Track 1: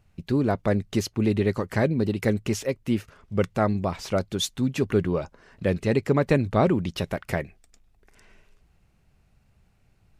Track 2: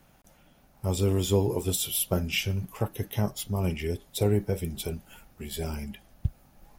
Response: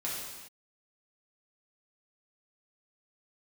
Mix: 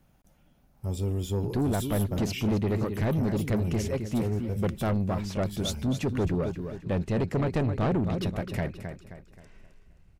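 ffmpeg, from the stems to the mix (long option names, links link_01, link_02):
-filter_complex "[0:a]adelay=1250,volume=-4.5dB,asplit=2[link_01][link_02];[link_02]volume=-10.5dB[link_03];[1:a]volume=-9dB[link_04];[link_03]aecho=0:1:264|528|792|1056|1320:1|0.39|0.152|0.0593|0.0231[link_05];[link_01][link_04][link_05]amix=inputs=3:normalize=0,lowshelf=frequency=320:gain=8.5,asoftclip=type=tanh:threshold=-21.5dB"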